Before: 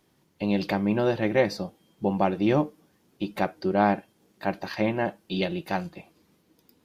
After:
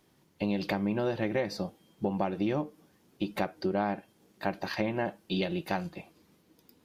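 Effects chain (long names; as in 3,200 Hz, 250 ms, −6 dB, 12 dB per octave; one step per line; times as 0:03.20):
downward compressor 6 to 1, threshold −26 dBFS, peak gain reduction 10 dB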